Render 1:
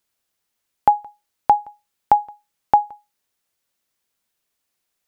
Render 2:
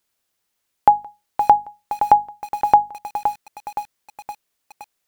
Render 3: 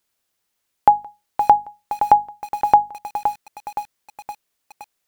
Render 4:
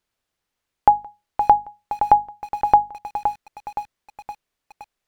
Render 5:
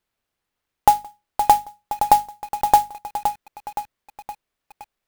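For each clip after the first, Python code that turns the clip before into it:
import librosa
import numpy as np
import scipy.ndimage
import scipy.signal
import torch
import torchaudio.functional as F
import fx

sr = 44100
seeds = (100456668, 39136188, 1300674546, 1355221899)

y1 = fx.hum_notches(x, sr, base_hz=50, count=5)
y1 = fx.echo_crushed(y1, sr, ms=518, feedback_pct=55, bits=6, wet_db=-8.0)
y1 = F.gain(torch.from_numpy(y1), 2.0).numpy()
y2 = y1
y3 = fx.lowpass(y2, sr, hz=3400.0, slope=6)
y3 = fx.low_shelf(y3, sr, hz=78.0, db=9.5)
y3 = F.gain(torch.from_numpy(y3), -1.0).numpy()
y4 = fx.clock_jitter(y3, sr, seeds[0], jitter_ms=0.034)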